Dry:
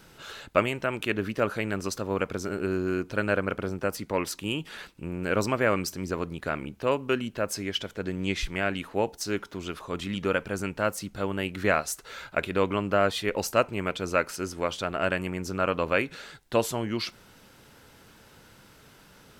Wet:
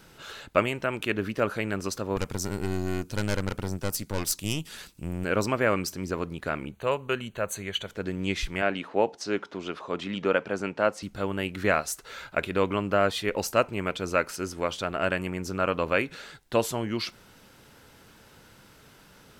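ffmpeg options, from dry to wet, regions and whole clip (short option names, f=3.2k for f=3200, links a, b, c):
-filter_complex "[0:a]asettb=1/sr,asplit=3[a][b][c];[a]atrim=end=2.164[d];[b]atrim=start=2.16:end=5.24,asetpts=PTS-STARTPTS,afade=t=in:d=0.004:c=qsin,afade=t=out:st=3.076:d=0.004:c=qsin,aeval=exprs='(tanh(15.8*val(0)+0.8)-tanh(0.8))/15.8':c=same,bass=f=250:g=7,treble=f=4k:g=14[e];[c]atrim=start=5.236[f];[d][e]acrossfade=d=0.004:c1=hsin:c2=qsin[g];[g][f]acrossfade=d=0.004:c1=qsin:c2=hsin,asettb=1/sr,asplit=3[h][i][j];[h]atrim=end=6.714[k];[i]atrim=start=6.71:end=7.88,asetpts=PTS-STARTPTS,afade=t=in:d=0.004:c=qsin,afade=t=out:st=1.166:d=0.004:c=qsin,asuperstop=centerf=5200:order=12:qfactor=4.1,equalizer=f=280:t=o:w=0.6:g=-10[l];[j]atrim=start=7.876[m];[k][l]acrossfade=d=0.004:c1=hsin:c2=qsin[n];[n][m]acrossfade=d=0.004:c1=qsin:c2=hsin,asettb=1/sr,asplit=3[o][p][q];[o]atrim=end=8.624[r];[p]atrim=start=8.62:end=11.03,asetpts=PTS-STARTPTS,afade=t=in:d=0.004:c=qsin,afade=t=out:st=2.406:d=0.004:c=qsin,highpass=160,lowpass=5.3k,equalizer=f=650:w=0.97:g=4[s];[q]atrim=start=11.026[t];[r][s]acrossfade=d=0.004:c1=hsin:c2=qsin[u];[u][t]acrossfade=d=0.004:c1=qsin:c2=hsin"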